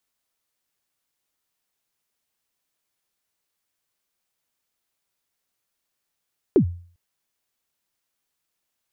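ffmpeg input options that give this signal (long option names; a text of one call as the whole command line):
ffmpeg -f lavfi -i "aevalsrc='0.355*pow(10,-3*t/0.46)*sin(2*PI*(440*0.09/log(87/440)*(exp(log(87/440)*min(t,0.09)/0.09)-1)+87*max(t-0.09,0)))':duration=0.4:sample_rate=44100" out.wav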